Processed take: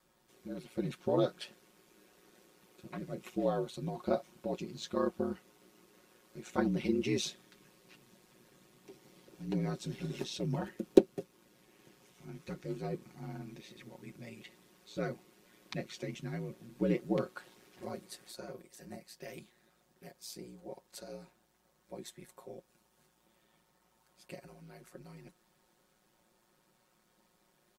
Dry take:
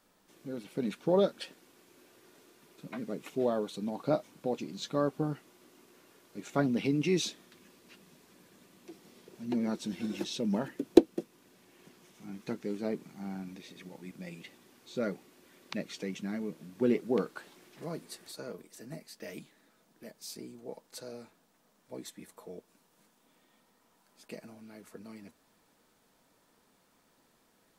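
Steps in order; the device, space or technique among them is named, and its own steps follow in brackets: ring-modulated robot voice (ring modulator 57 Hz; comb 5.5 ms, depth 65%); trim -1.5 dB

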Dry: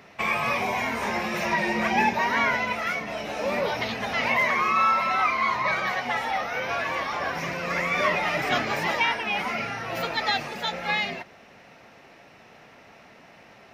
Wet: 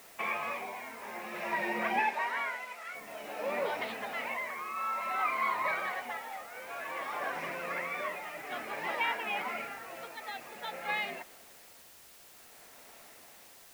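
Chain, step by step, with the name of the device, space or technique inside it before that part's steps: shortwave radio (band-pass 290–2900 Hz; tremolo 0.54 Hz, depth 68%; white noise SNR 19 dB); 1.99–2.95 s: frequency weighting A; trim -6 dB

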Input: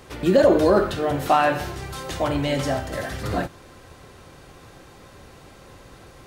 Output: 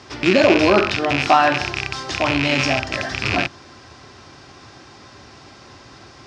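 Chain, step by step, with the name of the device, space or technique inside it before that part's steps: car door speaker with a rattle (rattle on loud lows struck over -29 dBFS, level -13 dBFS; cabinet simulation 97–6600 Hz, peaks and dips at 170 Hz -8 dB, 500 Hz -10 dB, 5.2 kHz +9 dB); trim +5 dB

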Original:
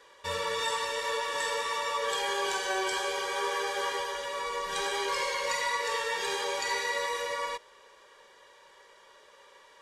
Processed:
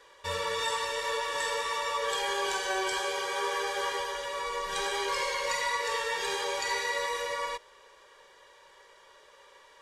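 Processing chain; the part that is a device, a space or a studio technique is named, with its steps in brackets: 2.99–3.55 s: high-pass 67 Hz; low shelf boost with a cut just above (bass shelf 81 Hz +6 dB; peaking EQ 230 Hz -5 dB 0.57 oct)

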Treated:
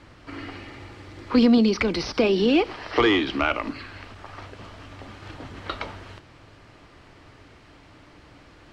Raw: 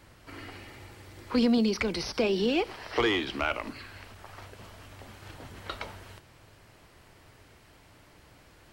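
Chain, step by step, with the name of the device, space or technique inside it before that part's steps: inside a cardboard box (low-pass 5.2 kHz 12 dB/octave; small resonant body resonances 290/1200 Hz, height 6 dB); trim +5.5 dB

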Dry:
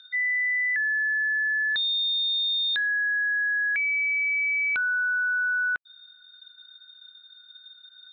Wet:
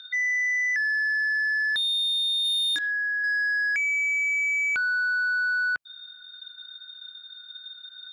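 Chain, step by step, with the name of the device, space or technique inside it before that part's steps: peaking EQ 120 Hz +3.5 dB 1.7 oct; 2.42–3.24 s: doubling 26 ms -3 dB; soft clipper into limiter (saturation -22.5 dBFS, distortion -21 dB; peak limiter -29 dBFS, peak gain reduction 6 dB); trim +6.5 dB

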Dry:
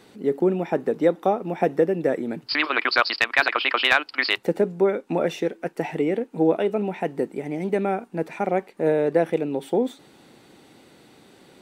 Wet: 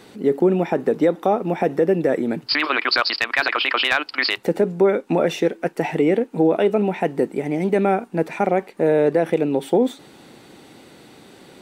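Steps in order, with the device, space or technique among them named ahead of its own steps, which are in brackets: clipper into limiter (hard clipper -7 dBFS, distortion -35 dB; peak limiter -14 dBFS, peak gain reduction 7 dB); trim +6 dB

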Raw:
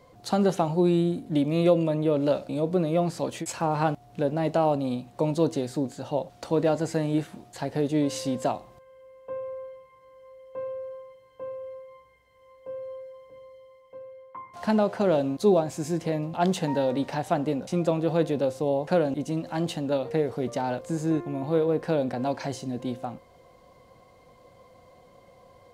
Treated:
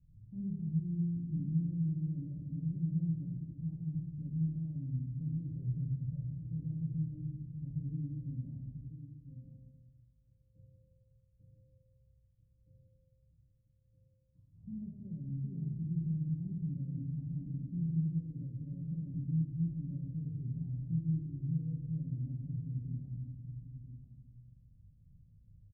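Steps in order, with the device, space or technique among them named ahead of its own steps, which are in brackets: 5.48–6.19 s: comb 1.7 ms, depth 95%; club heard from the street (peak limiter -19 dBFS, peak gain reduction 10.5 dB; low-pass 130 Hz 24 dB/octave; reverberation RT60 1.3 s, pre-delay 3 ms, DRR -3 dB); delay 990 ms -10.5 dB

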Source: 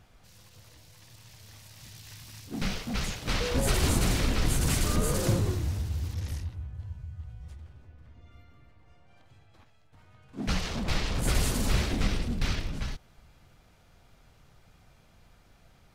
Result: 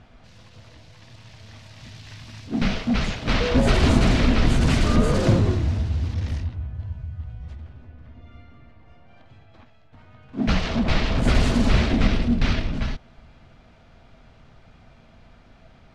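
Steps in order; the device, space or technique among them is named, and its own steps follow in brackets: inside a cardboard box (low-pass 3.9 kHz 12 dB/octave; small resonant body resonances 240/650 Hz, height 8 dB, ringing for 85 ms); trim +7.5 dB

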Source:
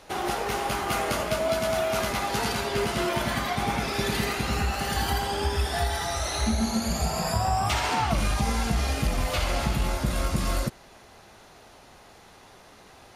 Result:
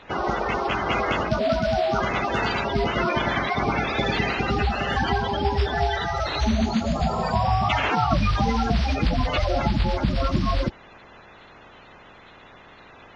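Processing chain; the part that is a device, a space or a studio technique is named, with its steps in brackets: clip after many re-uploads (low-pass 4.2 kHz 24 dB/octave; coarse spectral quantiser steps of 30 dB); trim +4.5 dB

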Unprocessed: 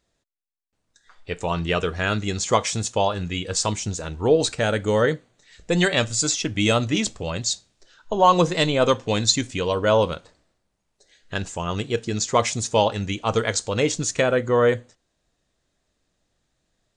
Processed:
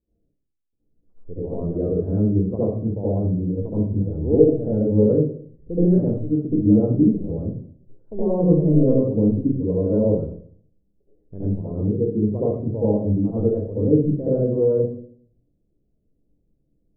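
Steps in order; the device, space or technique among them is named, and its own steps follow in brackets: next room (low-pass 430 Hz 24 dB/octave; reverberation RT60 0.55 s, pre-delay 68 ms, DRR -10 dB); trim -5 dB

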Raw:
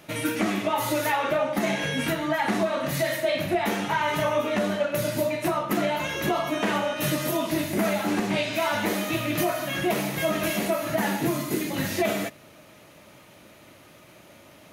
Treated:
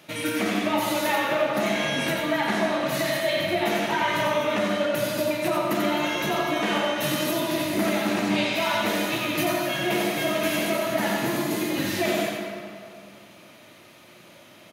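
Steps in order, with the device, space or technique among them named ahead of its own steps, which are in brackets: PA in a hall (high-pass 110 Hz; peaking EQ 3.6 kHz +4.5 dB 1.4 oct; delay 90 ms -5.5 dB; reverberation RT60 2.4 s, pre-delay 74 ms, DRR 3 dB); trim -2.5 dB

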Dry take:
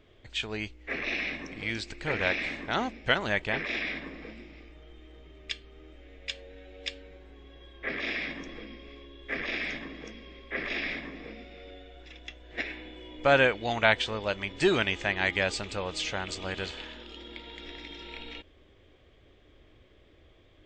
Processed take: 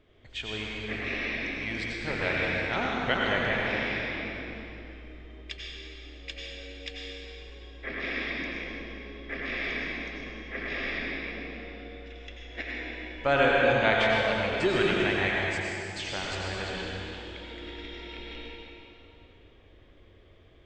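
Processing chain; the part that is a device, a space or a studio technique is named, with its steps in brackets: 15.36–15.96 s: inverse Chebyshev high-pass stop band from 1.7 kHz, stop band 60 dB; swimming-pool hall (reverberation RT60 3.0 s, pre-delay 81 ms, DRR -3.5 dB; treble shelf 5.7 kHz -7 dB); trim -3 dB

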